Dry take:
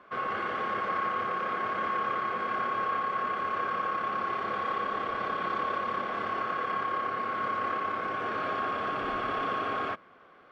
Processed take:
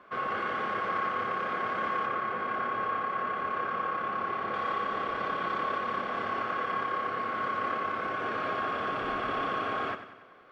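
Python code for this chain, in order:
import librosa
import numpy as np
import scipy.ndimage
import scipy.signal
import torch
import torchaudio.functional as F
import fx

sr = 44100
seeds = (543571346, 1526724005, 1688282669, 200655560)

y = fx.lowpass(x, sr, hz=3000.0, slope=6, at=(2.06, 4.54))
y = fx.echo_feedback(y, sr, ms=94, feedback_pct=53, wet_db=-11.5)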